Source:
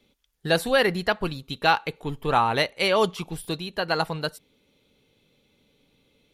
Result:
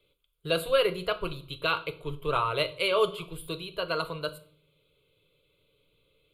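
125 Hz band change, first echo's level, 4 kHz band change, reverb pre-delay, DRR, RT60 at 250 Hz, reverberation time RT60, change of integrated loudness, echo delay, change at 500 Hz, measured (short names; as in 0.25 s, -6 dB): -6.5 dB, none, -4.0 dB, 6 ms, 9.0 dB, 0.75 s, 0.55 s, -5.0 dB, none, -3.0 dB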